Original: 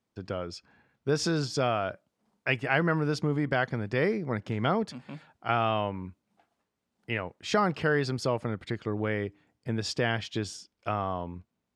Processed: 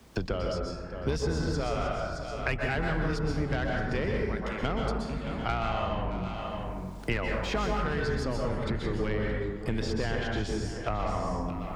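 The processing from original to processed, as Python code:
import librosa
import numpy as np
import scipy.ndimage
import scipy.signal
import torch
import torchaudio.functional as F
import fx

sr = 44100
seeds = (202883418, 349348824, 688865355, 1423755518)

y = fx.octave_divider(x, sr, octaves=2, level_db=1.0)
y = fx.highpass(y, sr, hz=540.0, slope=12, at=(4.23, 4.63))
y = fx.leveller(y, sr, passes=1, at=(7.11, 7.66))
y = fx.lowpass(y, sr, hz=1500.0, slope=12, at=(10.88, 11.32), fade=0.02)
y = 10.0 ** (-20.0 / 20.0) * np.tanh(y / 10.0 ** (-20.0 / 20.0))
y = y + 10.0 ** (-18.5 / 20.0) * np.pad(y, (int(619 * sr / 1000.0), 0))[:len(y)]
y = fx.rev_plate(y, sr, seeds[0], rt60_s=0.88, hf_ratio=0.5, predelay_ms=110, drr_db=-0.5)
y = fx.band_squash(y, sr, depth_pct=100)
y = y * librosa.db_to_amplitude(-4.5)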